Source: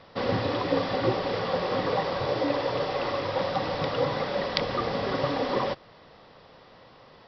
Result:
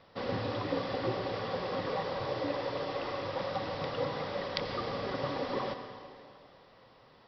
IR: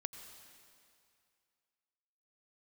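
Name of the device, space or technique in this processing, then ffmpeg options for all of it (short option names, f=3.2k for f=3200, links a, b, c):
stairwell: -filter_complex "[1:a]atrim=start_sample=2205[a];[0:a][a]afir=irnorm=-1:irlink=0,volume=-5dB"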